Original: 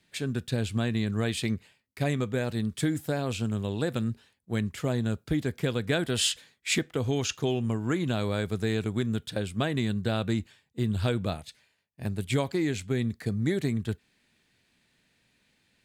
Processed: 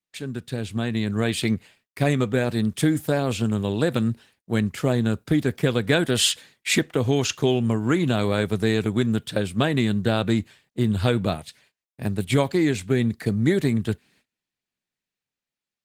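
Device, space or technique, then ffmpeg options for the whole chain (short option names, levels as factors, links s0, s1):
video call: -af "highpass=100,dynaudnorm=f=290:g=7:m=2.37,agate=range=0.0447:threshold=0.00158:ratio=16:detection=peak" -ar 48000 -c:a libopus -b:a 20k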